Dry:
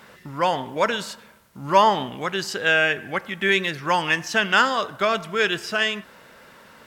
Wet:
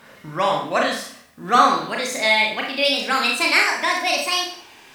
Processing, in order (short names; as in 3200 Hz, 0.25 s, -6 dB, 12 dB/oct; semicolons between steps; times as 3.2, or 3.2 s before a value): speed glide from 103% -> 175%; Schroeder reverb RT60 0.52 s, combs from 26 ms, DRR -0.5 dB; gain -1 dB